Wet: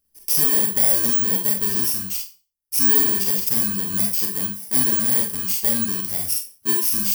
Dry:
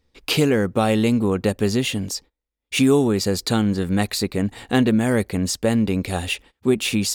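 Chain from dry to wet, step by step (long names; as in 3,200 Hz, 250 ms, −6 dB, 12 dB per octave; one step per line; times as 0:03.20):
samples in bit-reversed order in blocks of 32 samples
first-order pre-emphasis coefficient 0.8
four-comb reverb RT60 0.32 s, combs from 31 ms, DRR 0.5 dB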